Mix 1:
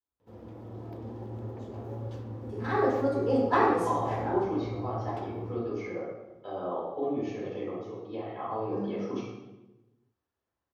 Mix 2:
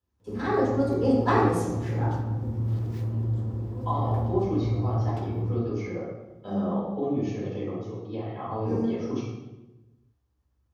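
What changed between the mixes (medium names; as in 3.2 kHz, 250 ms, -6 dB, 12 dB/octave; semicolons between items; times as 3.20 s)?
first voice: entry -2.25 s; master: add tone controls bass +12 dB, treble +7 dB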